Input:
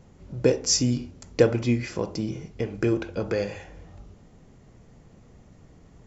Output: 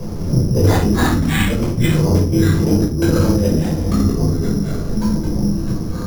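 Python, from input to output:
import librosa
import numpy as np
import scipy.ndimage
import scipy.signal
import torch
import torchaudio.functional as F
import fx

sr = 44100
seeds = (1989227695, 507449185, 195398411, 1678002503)

y = fx.lowpass(x, sr, hz=1200.0, slope=6)
y = fx.peak_eq(y, sr, hz=300.0, db=8.5, octaves=0.48)
y = fx.over_compress(y, sr, threshold_db=-31.0, ratio=-0.5)
y = fx.gate_flip(y, sr, shuts_db=-16.0, range_db=-25)
y = fx.echo_pitch(y, sr, ms=111, semitones=-4, count=2, db_per_echo=-3.0)
y = fx.room_shoebox(y, sr, seeds[0], volume_m3=520.0, walls='furnished', distance_m=5.4)
y = np.repeat(y[::8], 8)[:len(y)]
y = fx.band_squash(y, sr, depth_pct=40)
y = y * 10.0 ** (4.5 / 20.0)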